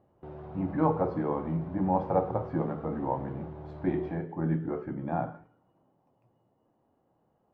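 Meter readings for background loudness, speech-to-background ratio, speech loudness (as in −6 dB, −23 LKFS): −44.5 LKFS, 13.0 dB, −31.5 LKFS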